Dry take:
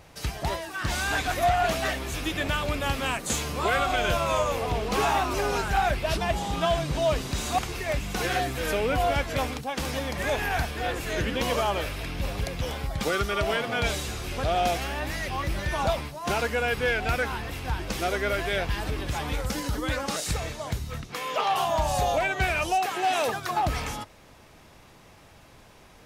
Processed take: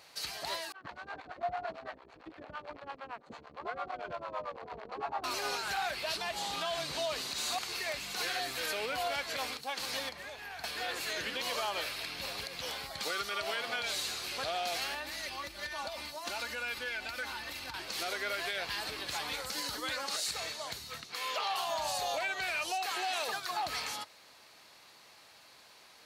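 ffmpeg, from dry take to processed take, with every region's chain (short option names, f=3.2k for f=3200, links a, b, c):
-filter_complex "[0:a]asettb=1/sr,asplit=3[a][b][c];[a]atrim=end=0.724[d];[b]atrim=start=0.72:end=5.24,asetpts=PTS-STARTPTS,afade=t=in:d=0.004:c=qsin,afade=t=out:st=4.516:d=0.004:c=qsin,acrusher=bits=5:dc=4:mix=0:aa=0.000001,lowpass=1k,acrossover=split=460[e][f];[e]aeval=exprs='val(0)*(1-1/2+1/2*cos(2*PI*8.9*n/s))':c=same[g];[f]aeval=exprs='val(0)*(1-1/2-1/2*cos(2*PI*8.9*n/s))':c=same[h];[g][h]amix=inputs=2:normalize=0[i];[c]atrim=start=5.236[j];[d][i]acrossfade=d=0.004:c1=hsin:c2=qsin[k];[k][j]acrossfade=d=0.004:c1=qsin:c2=hsin,asettb=1/sr,asplit=3[l][m][n];[l]atrim=end=10.094[o];[m]atrim=start=10.09:end=10.64,asetpts=PTS-STARTPTS,afade=t=in:d=0.004:c=qsin,afade=t=out:st=0.546:d=0.004:c=qsin,equalizer=f=11k:t=o:w=2.9:g=-7,acrossover=split=130|2500[p][q][r];[p]acompressor=threshold=-36dB:ratio=4[s];[q]acompressor=threshold=-40dB:ratio=4[t];[r]acompressor=threshold=-51dB:ratio=4[u];[s][t][u]amix=inputs=3:normalize=0[v];[n]atrim=start=10.636[w];[o][v]acrossfade=d=0.004:c1=hsin:c2=qsin[x];[x][w]acrossfade=d=0.004:c1=qsin:c2=hsin,asettb=1/sr,asplit=3[y][z][aa];[y]atrim=end=14.944[ab];[z]atrim=start=14.94:end=17.74,asetpts=PTS-STARTPTS,afade=t=in:d=0.004:c=qsin,afade=t=out:st=2.796:d=0.004:c=qsin,lowshelf=f=130:g=7.5,aecho=1:1:3.4:0.58,atrim=end_sample=123480,acompressor=threshold=-27dB:ratio=10:attack=3.2:release=140:knee=1:detection=peak[ac];[aa]atrim=start=17.736[ad];[ab][ac]acrossfade=d=0.004:c1=hsin:c2=qsin[ae];[ae][ad]acrossfade=d=0.004:c1=qsin:c2=hsin,highpass=f=1.2k:p=1,equalizer=f=4.3k:w=5.5:g=11,alimiter=limit=-23.5dB:level=0:latency=1:release=87,volume=-1.5dB"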